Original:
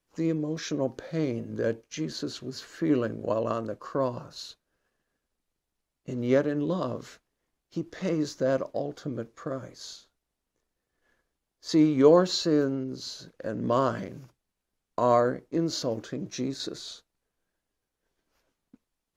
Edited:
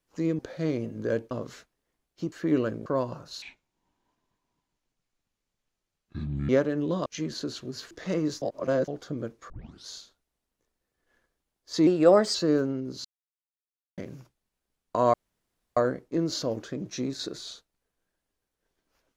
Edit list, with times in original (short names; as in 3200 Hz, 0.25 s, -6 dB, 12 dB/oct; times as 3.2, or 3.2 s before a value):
0.39–0.93 cut
1.85–2.7 swap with 6.85–7.86
3.24–3.91 cut
4.47–6.28 speed 59%
8.37–8.83 reverse
9.45 tape start 0.38 s
11.82–12.38 speed 117%
13.08–14.01 mute
15.17 insert room tone 0.63 s